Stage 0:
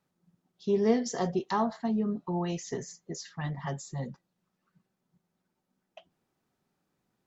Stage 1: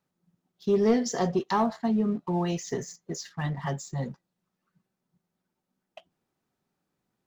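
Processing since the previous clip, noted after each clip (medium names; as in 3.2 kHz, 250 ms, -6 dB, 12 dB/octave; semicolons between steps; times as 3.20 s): waveshaping leveller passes 1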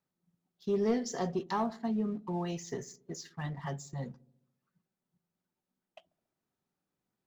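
feedback echo behind a low-pass 70 ms, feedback 60%, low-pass 410 Hz, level -18 dB; trim -7 dB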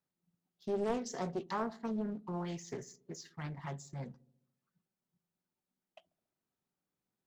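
loudspeaker Doppler distortion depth 0.58 ms; trim -4 dB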